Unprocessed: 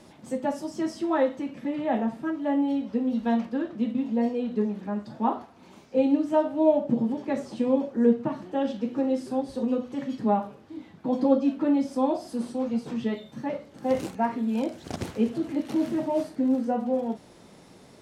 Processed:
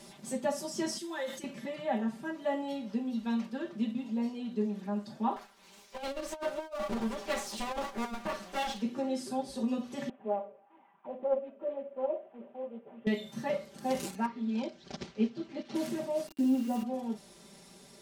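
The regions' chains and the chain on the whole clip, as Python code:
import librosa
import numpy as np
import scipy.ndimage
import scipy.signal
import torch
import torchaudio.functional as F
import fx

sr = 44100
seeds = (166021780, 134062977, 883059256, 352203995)

y = fx.chain(x, sr, fx.pre_emphasis(coefficient=0.8),
    fx.comb(ms=5.7, depth=0.56),
    fx.sustainer(db_per_s=120.0), at=(0.98, 1.44))
y = fx.chain(y, sr, fx.lower_of_two(delay_ms=9.8),
    fx.low_shelf(hz=490.0, db=-10.0),
    fx.over_compress(threshold_db=-32.0, ratio=-0.5), at=(5.36, 8.82))
y = fx.chain(y, sr, fx.cvsd(bps=16000),
    fx.auto_wah(base_hz=530.0, top_hz=1100.0, q=4.4, full_db=-26.0, direction='down'),
    fx.doppler_dist(depth_ms=0.12), at=(10.09, 13.07))
y = fx.chain(y, sr, fx.lowpass(hz=5400.0, slope=24),
    fx.upward_expand(threshold_db=-39.0, expansion=1.5), at=(14.26, 15.75))
y = fx.chain(y, sr, fx.air_absorb(metres=78.0),
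    fx.sample_gate(floor_db=-39.0),
    fx.small_body(hz=(300.0, 2800.0), ring_ms=65, db=17), at=(16.27, 16.83))
y = fx.high_shelf(y, sr, hz=3200.0, db=11.5)
y = y + 0.87 * np.pad(y, (int(5.1 * sr / 1000.0), 0))[:len(y)]
y = fx.rider(y, sr, range_db=4, speed_s=0.5)
y = y * librosa.db_to_amplitude(-8.0)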